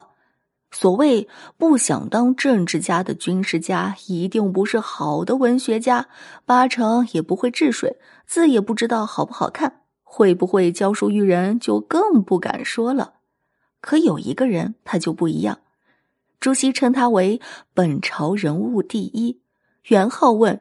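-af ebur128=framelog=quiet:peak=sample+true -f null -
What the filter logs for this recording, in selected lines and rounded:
Integrated loudness:
  I:         -19.2 LUFS
  Threshold: -29.7 LUFS
Loudness range:
  LRA:         2.7 LU
  Threshold: -39.9 LUFS
  LRA low:   -21.3 LUFS
  LRA high:  -18.6 LUFS
Sample peak:
  Peak:       -1.7 dBFS
True peak:
  Peak:       -1.7 dBFS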